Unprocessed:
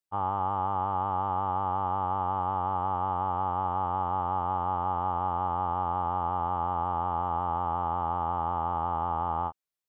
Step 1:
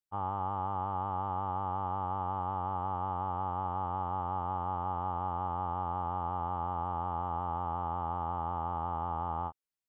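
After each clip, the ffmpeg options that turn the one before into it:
ffmpeg -i in.wav -af "lowshelf=frequency=250:gain=4.5,volume=-6dB" out.wav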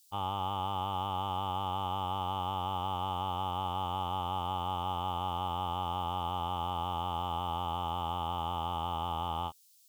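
ffmpeg -i in.wav -af "aexciter=amount=12:drive=9.5:freq=2800" out.wav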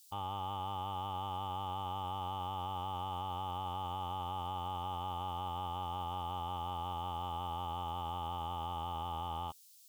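ffmpeg -i in.wav -af "alimiter=level_in=9.5dB:limit=-24dB:level=0:latency=1:release=10,volume=-9.5dB,volume=2.5dB" out.wav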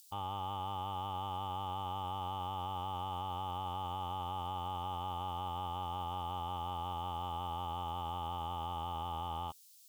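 ffmpeg -i in.wav -af "acompressor=mode=upward:threshold=-59dB:ratio=2.5" out.wav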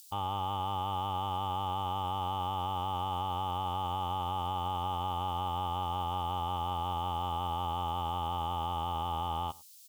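ffmpeg -i in.wav -af "aecho=1:1:102:0.0708,volume=5.5dB" out.wav

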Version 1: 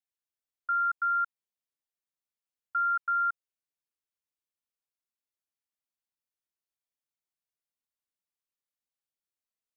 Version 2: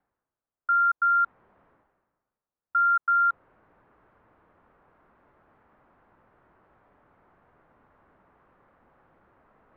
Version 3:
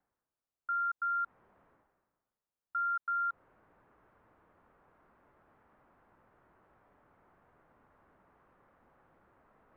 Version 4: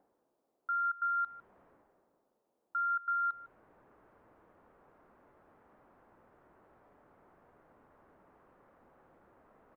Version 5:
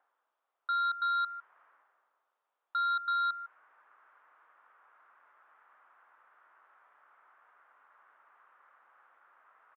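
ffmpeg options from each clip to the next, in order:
ffmpeg -i in.wav -af "lowpass=frequency=1400:width=0.5412,lowpass=frequency=1400:width=1.3066,areverse,acompressor=mode=upward:threshold=-44dB:ratio=2.5,areverse,volume=8.5dB" out.wav
ffmpeg -i in.wav -af "alimiter=level_in=0.5dB:limit=-24dB:level=0:latency=1:release=77,volume=-0.5dB,volume=-4.5dB" out.wav
ffmpeg -i in.wav -filter_complex "[0:a]acrossover=split=230|760[link_01][link_02][link_03];[link_02]acompressor=mode=upward:threshold=-60dB:ratio=2.5[link_04];[link_01][link_04][link_03]amix=inputs=3:normalize=0,aecho=1:1:154:0.126" out.wav
ffmpeg -i in.wav -af "highpass=frequency=1300:width_type=q:width=2,aresample=8000,asoftclip=type=tanh:threshold=-30dB,aresample=44100,volume=2dB" out.wav

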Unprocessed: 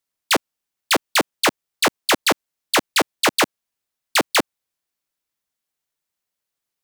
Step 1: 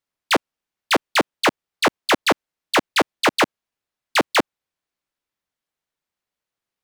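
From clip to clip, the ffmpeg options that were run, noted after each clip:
ffmpeg -i in.wav -af "highshelf=frequency=5200:gain=-12,volume=1.5dB" out.wav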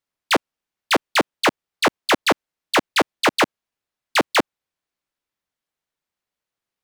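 ffmpeg -i in.wav -af anull out.wav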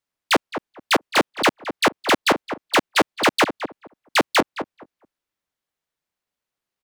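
ffmpeg -i in.wav -filter_complex "[0:a]asplit=2[link_01][link_02];[link_02]adelay=215,lowpass=frequency=1200:poles=1,volume=-9dB,asplit=2[link_03][link_04];[link_04]adelay=215,lowpass=frequency=1200:poles=1,volume=0.19,asplit=2[link_05][link_06];[link_06]adelay=215,lowpass=frequency=1200:poles=1,volume=0.19[link_07];[link_01][link_03][link_05][link_07]amix=inputs=4:normalize=0" out.wav

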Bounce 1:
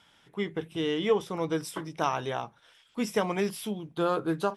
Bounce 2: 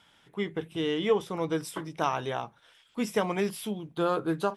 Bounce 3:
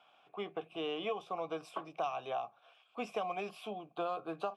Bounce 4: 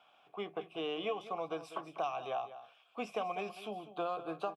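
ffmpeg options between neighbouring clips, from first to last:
ffmpeg -i in.wav -af "equalizer=frequency=5500:width_type=o:width=0.26:gain=-3" out.wav
ffmpeg -i in.wav -filter_complex "[0:a]asplit=3[link_01][link_02][link_03];[link_01]bandpass=frequency=730:width_type=q:width=8,volume=0dB[link_04];[link_02]bandpass=frequency=1090:width_type=q:width=8,volume=-6dB[link_05];[link_03]bandpass=frequency=2440:width_type=q:width=8,volume=-9dB[link_06];[link_04][link_05][link_06]amix=inputs=3:normalize=0,acrossover=split=180|3000[link_07][link_08][link_09];[link_08]acompressor=threshold=-45dB:ratio=6[link_10];[link_07][link_10][link_09]amix=inputs=3:normalize=0,volume=10.5dB" out.wav
ffmpeg -i in.wav -af "aecho=1:1:197:0.211" out.wav

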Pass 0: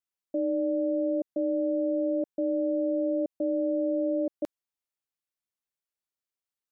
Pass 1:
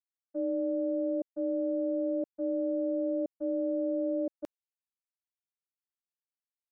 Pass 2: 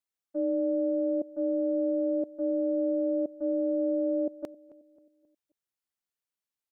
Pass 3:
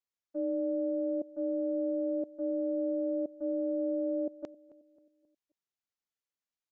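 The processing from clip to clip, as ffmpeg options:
ffmpeg -i in.wav -af "agate=range=-33dB:threshold=-23dB:ratio=3:detection=peak" out.wav
ffmpeg -i in.wav -filter_complex "[0:a]asplit=2[link_01][link_02];[link_02]adelay=267,lowpass=frequency=880:poles=1,volume=-18dB,asplit=2[link_03][link_04];[link_04]adelay=267,lowpass=frequency=880:poles=1,volume=0.47,asplit=2[link_05][link_06];[link_06]adelay=267,lowpass=frequency=880:poles=1,volume=0.47,asplit=2[link_07][link_08];[link_08]adelay=267,lowpass=frequency=880:poles=1,volume=0.47[link_09];[link_01][link_03][link_05][link_07][link_09]amix=inputs=5:normalize=0,volume=3dB" out.wav
ffmpeg -i in.wav -af "aresample=16000,aresample=44100,volume=-4dB" out.wav

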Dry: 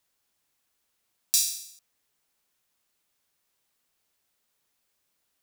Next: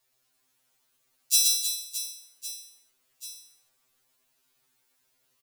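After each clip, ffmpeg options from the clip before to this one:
ffmpeg -i in.wav -filter_complex "[0:a]asplit=2[link_01][link_02];[link_02]aecho=0:1:120|312|619.2|1111|1897:0.631|0.398|0.251|0.158|0.1[link_03];[link_01][link_03]amix=inputs=2:normalize=0,afftfilt=real='re*2.45*eq(mod(b,6),0)':imag='im*2.45*eq(mod(b,6),0)':win_size=2048:overlap=0.75,volume=4.5dB" out.wav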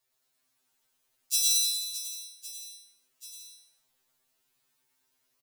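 ffmpeg -i in.wav -af "aecho=1:1:100|170|219|253.3|277.3:0.631|0.398|0.251|0.158|0.1,volume=-5.5dB" out.wav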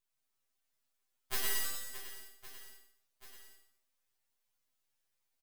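ffmpeg -i in.wav -af "aeval=exprs='abs(val(0))':channel_layout=same,volume=-6.5dB" out.wav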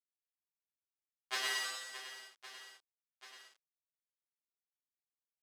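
ffmpeg -i in.wav -af "aeval=exprs='val(0)*gte(abs(val(0)),0.00282)':channel_layout=same,highpass=570,lowpass=5200,volume=4.5dB" out.wav

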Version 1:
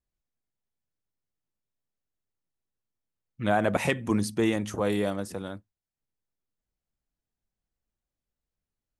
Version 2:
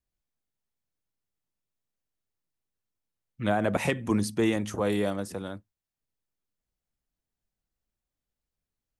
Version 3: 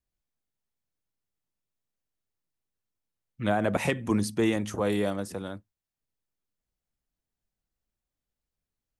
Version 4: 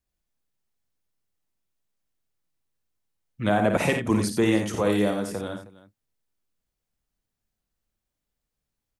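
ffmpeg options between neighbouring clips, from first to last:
ffmpeg -i in.wav -filter_complex "[0:a]acrossover=split=480[link_01][link_02];[link_02]acompressor=threshold=-25dB:ratio=6[link_03];[link_01][link_03]amix=inputs=2:normalize=0" out.wav
ffmpeg -i in.wav -af anull out.wav
ffmpeg -i in.wav -af "aecho=1:1:55|88|315:0.422|0.376|0.119,volume=3dB" out.wav

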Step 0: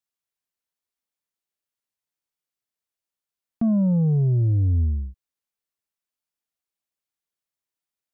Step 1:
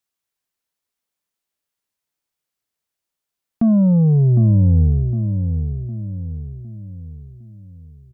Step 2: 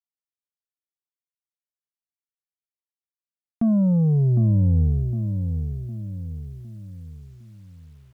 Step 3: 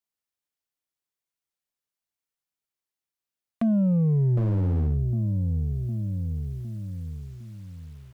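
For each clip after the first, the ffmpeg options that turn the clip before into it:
ffmpeg -i in.wav -filter_complex "[0:a]asplit=2[link_01][link_02];[link_02]adelay=758,lowpass=frequency=840:poles=1,volume=-7dB,asplit=2[link_03][link_04];[link_04]adelay=758,lowpass=frequency=840:poles=1,volume=0.46,asplit=2[link_05][link_06];[link_06]adelay=758,lowpass=frequency=840:poles=1,volume=0.46,asplit=2[link_07][link_08];[link_08]adelay=758,lowpass=frequency=840:poles=1,volume=0.46,asplit=2[link_09][link_10];[link_10]adelay=758,lowpass=frequency=840:poles=1,volume=0.46[link_11];[link_01][link_03][link_05][link_07][link_09][link_11]amix=inputs=6:normalize=0,volume=6dB" out.wav
ffmpeg -i in.wav -af "acrusher=bits=9:mix=0:aa=0.000001,volume=-5dB" out.wav
ffmpeg -i in.wav -af "acompressor=threshold=-31dB:ratio=2,aeval=exprs='0.0668*(abs(mod(val(0)/0.0668+3,4)-2)-1)':channel_layout=same,volume=4.5dB" out.wav

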